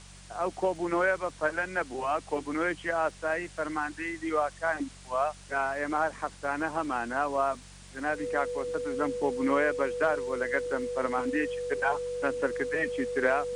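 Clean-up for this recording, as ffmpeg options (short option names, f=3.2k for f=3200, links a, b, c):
-af "adeclick=t=4,bandreject=f=47.3:t=h:w=4,bandreject=f=94.6:t=h:w=4,bandreject=f=141.9:t=h:w=4,bandreject=f=189.2:t=h:w=4,bandreject=f=490:w=30,afwtdn=0.0032"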